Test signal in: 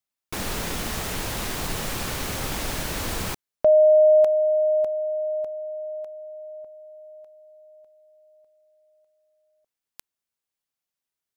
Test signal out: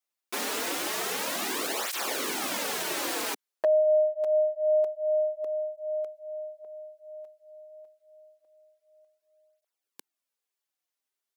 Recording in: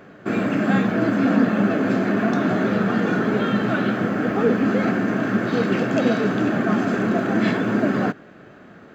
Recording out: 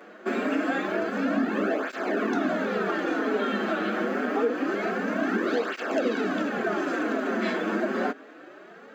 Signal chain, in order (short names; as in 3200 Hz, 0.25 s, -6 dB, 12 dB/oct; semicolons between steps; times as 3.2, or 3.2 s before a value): HPF 270 Hz 24 dB/oct; compressor 6:1, threshold -23 dBFS; hard clip -17 dBFS; tape flanging out of phase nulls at 0.26 Hz, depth 7.7 ms; gain +3 dB